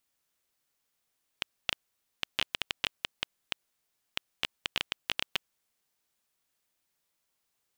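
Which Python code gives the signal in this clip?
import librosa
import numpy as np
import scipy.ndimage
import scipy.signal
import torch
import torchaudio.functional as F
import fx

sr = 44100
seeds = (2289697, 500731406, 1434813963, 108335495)

y = fx.geiger_clicks(sr, seeds[0], length_s=4.38, per_s=7.2, level_db=-10.0)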